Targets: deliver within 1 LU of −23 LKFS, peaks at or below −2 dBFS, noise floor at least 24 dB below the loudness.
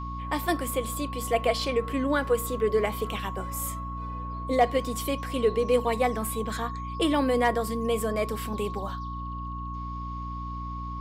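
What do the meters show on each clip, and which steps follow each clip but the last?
mains hum 60 Hz; hum harmonics up to 300 Hz; level of the hum −34 dBFS; interfering tone 1,100 Hz; level of the tone −36 dBFS; integrated loudness −28.5 LKFS; sample peak −8.5 dBFS; target loudness −23.0 LKFS
→ hum removal 60 Hz, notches 5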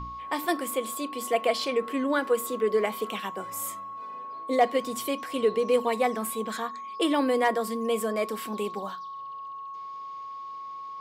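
mains hum none found; interfering tone 1,100 Hz; level of the tone −36 dBFS
→ notch filter 1,100 Hz, Q 30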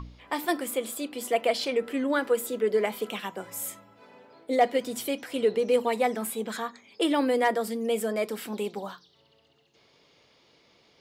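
interfering tone none found; integrated loudness −28.0 LKFS; sample peak −9.5 dBFS; target loudness −23.0 LKFS
→ level +5 dB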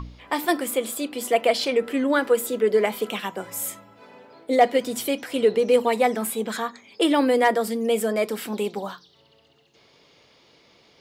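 integrated loudness −23.0 LKFS; sample peak −4.5 dBFS; background noise floor −58 dBFS

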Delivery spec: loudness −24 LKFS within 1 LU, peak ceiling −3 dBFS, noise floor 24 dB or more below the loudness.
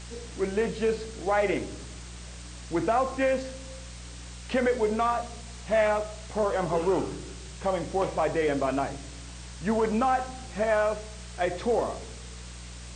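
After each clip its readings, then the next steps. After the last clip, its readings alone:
mains hum 60 Hz; hum harmonics up to 180 Hz; level of the hum −41 dBFS; background noise floor −42 dBFS; target noise floor −52 dBFS; integrated loudness −28.0 LKFS; sample peak −14.0 dBFS; target loudness −24.0 LKFS
→ hum removal 60 Hz, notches 3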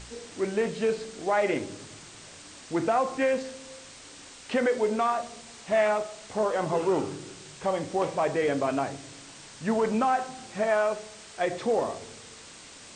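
mains hum none found; background noise floor −48 dBFS; target noise floor −52 dBFS
→ broadband denoise 6 dB, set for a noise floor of −48 dBFS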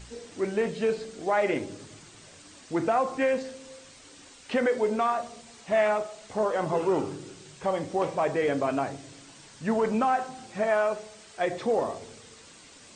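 background noise floor −51 dBFS; target noise floor −52 dBFS
→ broadband denoise 6 dB, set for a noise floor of −51 dBFS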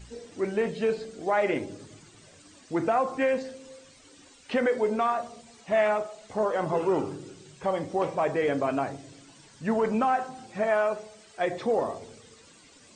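background noise floor −55 dBFS; integrated loudness −28.0 LKFS; sample peak −14.0 dBFS; target loudness −24.0 LKFS
→ level +4 dB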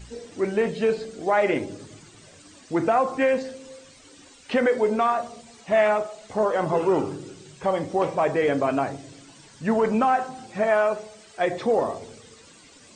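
integrated loudness −24.0 LKFS; sample peak −10.0 dBFS; background noise floor −51 dBFS

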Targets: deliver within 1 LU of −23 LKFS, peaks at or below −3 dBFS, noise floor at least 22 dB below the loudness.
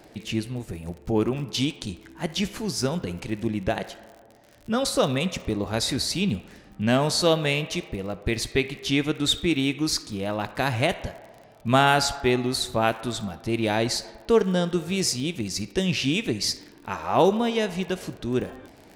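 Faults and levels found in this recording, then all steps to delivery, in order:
crackle rate 46 per second; integrated loudness −25.5 LKFS; sample peak −6.0 dBFS; target loudness −23.0 LKFS
→ click removal
level +2.5 dB

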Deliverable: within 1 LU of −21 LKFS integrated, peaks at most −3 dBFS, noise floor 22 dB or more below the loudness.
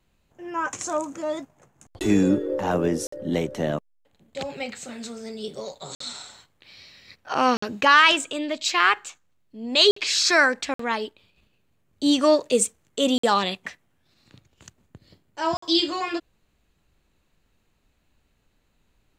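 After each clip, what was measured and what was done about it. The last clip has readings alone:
number of dropouts 7; longest dropout 54 ms; integrated loudness −22.5 LKFS; sample peak −3.0 dBFS; target loudness −21.0 LKFS
→ repair the gap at 0:03.07/0:05.95/0:07.57/0:09.91/0:10.74/0:13.18/0:15.57, 54 ms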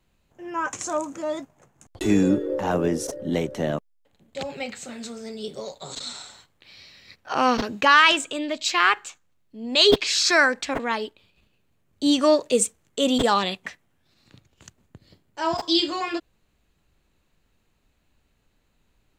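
number of dropouts 0; integrated loudness −22.0 LKFS; sample peak −3.0 dBFS; target loudness −21.0 LKFS
→ level +1 dB
brickwall limiter −3 dBFS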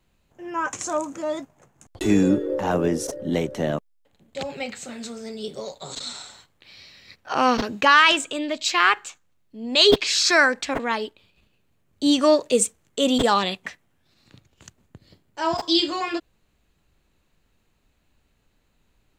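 integrated loudness −21.5 LKFS; sample peak −3.0 dBFS; background noise floor −67 dBFS

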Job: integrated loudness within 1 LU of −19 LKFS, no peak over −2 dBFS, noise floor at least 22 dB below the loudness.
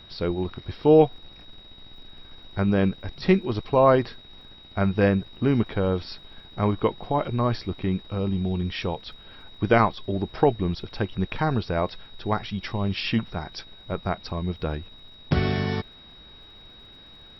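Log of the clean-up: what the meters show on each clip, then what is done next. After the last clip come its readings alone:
crackle rate 43 per second; interfering tone 3,800 Hz; level of the tone −47 dBFS; integrated loudness −25.0 LKFS; sample peak −5.0 dBFS; target loudness −19.0 LKFS
→ click removal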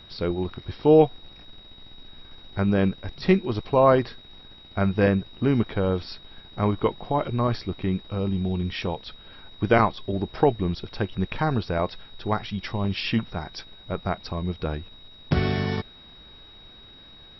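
crackle rate 0 per second; interfering tone 3,800 Hz; level of the tone −47 dBFS
→ notch filter 3,800 Hz, Q 30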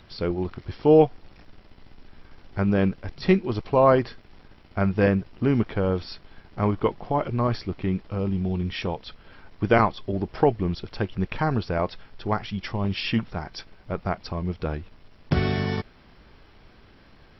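interfering tone none found; integrated loudness −25.0 LKFS; sample peak −5.0 dBFS; target loudness −19.0 LKFS
→ level +6 dB
brickwall limiter −2 dBFS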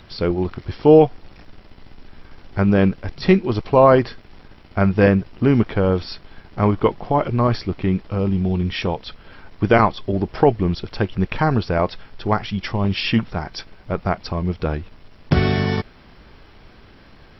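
integrated loudness −19.5 LKFS; sample peak −2.0 dBFS; background noise floor −47 dBFS

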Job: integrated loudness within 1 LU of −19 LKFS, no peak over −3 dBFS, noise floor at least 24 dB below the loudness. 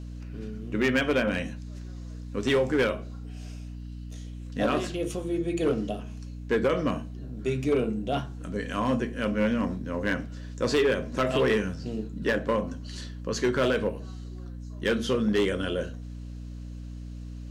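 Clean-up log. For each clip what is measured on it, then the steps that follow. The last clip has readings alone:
share of clipped samples 1.0%; peaks flattened at −18.0 dBFS; mains hum 60 Hz; hum harmonics up to 300 Hz; level of the hum −36 dBFS; integrated loudness −28.0 LKFS; sample peak −18.0 dBFS; target loudness −19.0 LKFS
→ clipped peaks rebuilt −18 dBFS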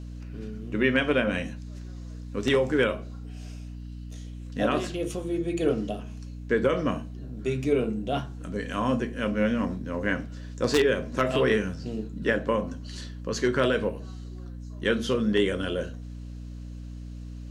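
share of clipped samples 0.0%; mains hum 60 Hz; hum harmonics up to 300 Hz; level of the hum −36 dBFS
→ mains-hum notches 60/120/180/240/300 Hz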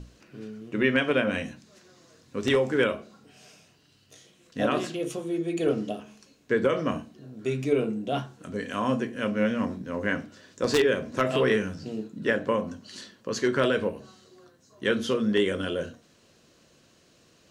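mains hum none found; integrated loudness −27.5 LKFS; sample peak −9.5 dBFS; target loudness −19.0 LKFS
→ level +8.5 dB
brickwall limiter −3 dBFS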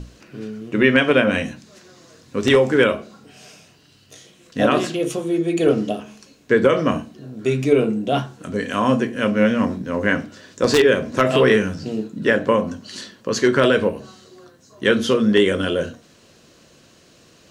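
integrated loudness −19.0 LKFS; sample peak −3.0 dBFS; background noise floor −52 dBFS

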